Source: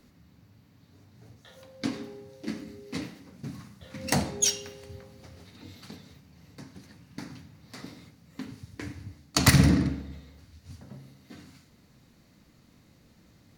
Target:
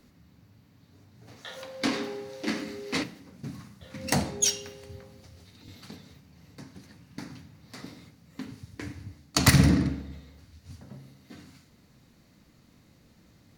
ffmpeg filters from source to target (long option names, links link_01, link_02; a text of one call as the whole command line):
ffmpeg -i in.wav -filter_complex "[0:a]asplit=3[link_01][link_02][link_03];[link_01]afade=type=out:start_time=1.27:duration=0.02[link_04];[link_02]asplit=2[link_05][link_06];[link_06]highpass=frequency=720:poles=1,volume=19dB,asoftclip=type=tanh:threshold=-15.5dB[link_07];[link_05][link_07]amix=inputs=2:normalize=0,lowpass=frequency=5000:poles=1,volume=-6dB,afade=type=in:start_time=1.27:duration=0.02,afade=type=out:start_time=3.02:duration=0.02[link_08];[link_03]afade=type=in:start_time=3.02:duration=0.02[link_09];[link_04][link_08][link_09]amix=inputs=3:normalize=0,asettb=1/sr,asplit=3[link_10][link_11][link_12];[link_10]atrim=end=5.204[link_13];[link_11]atrim=start=5.2:end=5.68,asetpts=PTS-STARTPTS,afade=type=in:duration=0.004:curve=qsin,afade=type=out:start_time=0.476:duration=0.004:curve=qsin,acrossover=split=130|3000[link_14][link_15][link_16];[link_15]acompressor=threshold=-58dB:ratio=2.5[link_17];[link_14][link_17][link_16]amix=inputs=3:normalize=0[link_18];[link_12]atrim=start=5.676[link_19];[link_13][link_18]acrossfade=duration=0.004:curve1=hsin:curve2=qsin[link_20];[link_20][link_19]acrossfade=duration=0.004:curve1=qsin:curve2=hsin" out.wav